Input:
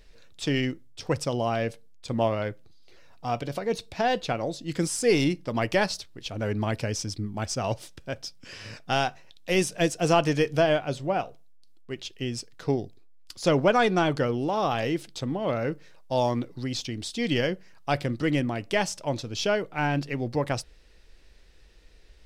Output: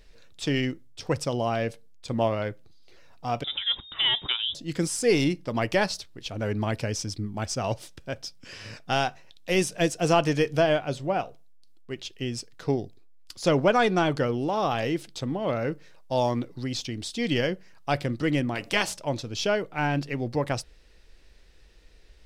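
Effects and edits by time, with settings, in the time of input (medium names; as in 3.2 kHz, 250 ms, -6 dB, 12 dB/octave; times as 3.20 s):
3.44–4.55 s: frequency inversion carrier 3.7 kHz
18.54–18.95 s: spectral peaks clipped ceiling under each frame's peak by 16 dB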